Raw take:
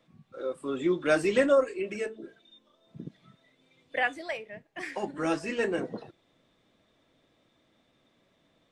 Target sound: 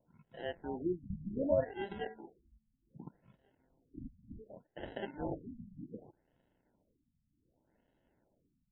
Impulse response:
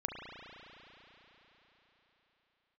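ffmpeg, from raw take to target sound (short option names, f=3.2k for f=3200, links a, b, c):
-filter_complex "[0:a]asettb=1/sr,asplit=3[a][b][c];[a]atrim=end=5.274[d];[b]atrim=start=5.27:end=5.79,asetpts=PTS-STARTPTS,afade=t=in:d=0.004:c=qsin,afade=t=out:st=0.516:d=0.004:c=qsin,equalizer=f=210:t=o:w=2.9:g=-6[e];[c]atrim=start=5.786[f];[d][e]acrossfade=d=0.004:c1=hsin:c2=qsin[g];[g][f]acrossfade=d=0.004:c1=qsin:c2=hsin,acrusher=samples=37:mix=1:aa=0.000001,afftfilt=real='re*lt(b*sr/1024,240*pow(4000/240,0.5+0.5*sin(2*PI*0.66*pts/sr)))':imag='im*lt(b*sr/1024,240*pow(4000/240,0.5+0.5*sin(2*PI*0.66*pts/sr)))':win_size=1024:overlap=0.75,volume=-7.5dB"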